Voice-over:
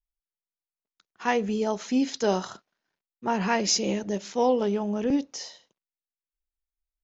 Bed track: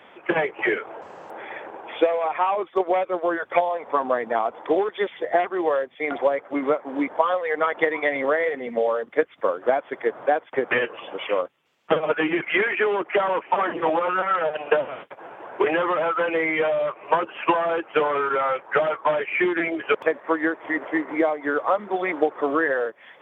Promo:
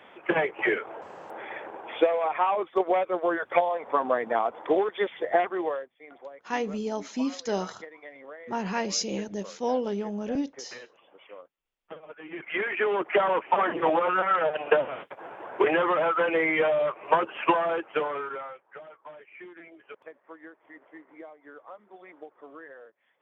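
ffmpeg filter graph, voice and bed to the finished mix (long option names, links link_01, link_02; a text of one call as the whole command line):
ffmpeg -i stem1.wav -i stem2.wav -filter_complex "[0:a]adelay=5250,volume=-4.5dB[link_01];[1:a]volume=18.5dB,afade=type=out:start_time=5.47:duration=0.46:silence=0.1,afade=type=in:start_time=12.23:duration=0.86:silence=0.0891251,afade=type=out:start_time=17.42:duration=1.18:silence=0.0749894[link_02];[link_01][link_02]amix=inputs=2:normalize=0" out.wav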